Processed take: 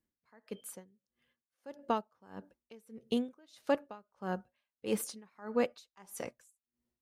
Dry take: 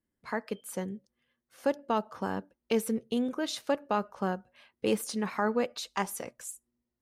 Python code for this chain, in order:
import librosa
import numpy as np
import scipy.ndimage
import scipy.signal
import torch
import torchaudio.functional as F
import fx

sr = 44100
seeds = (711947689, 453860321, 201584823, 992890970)

y = x * 10.0 ** (-30 * (0.5 - 0.5 * np.cos(2.0 * np.pi * 1.6 * np.arange(len(x)) / sr)) / 20.0)